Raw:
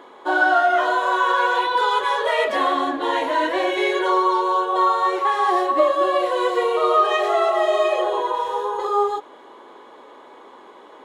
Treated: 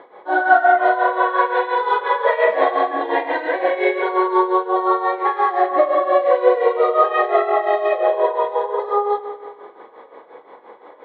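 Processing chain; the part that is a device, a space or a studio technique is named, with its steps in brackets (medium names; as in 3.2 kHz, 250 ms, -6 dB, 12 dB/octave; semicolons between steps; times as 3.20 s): high-pass 85 Hz; 2.62–3.52 s: comb 2.5 ms, depth 70%; combo amplifier with spring reverb and tremolo (spring tank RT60 1.7 s, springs 46 ms, chirp 60 ms, DRR 1.5 dB; tremolo 5.7 Hz, depth 72%; cabinet simulation 94–3600 Hz, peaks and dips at 150 Hz +9 dB, 250 Hz -6 dB, 500 Hz +8 dB, 740 Hz +6 dB, 2 kHz +6 dB, 2.9 kHz -8 dB); trim -1 dB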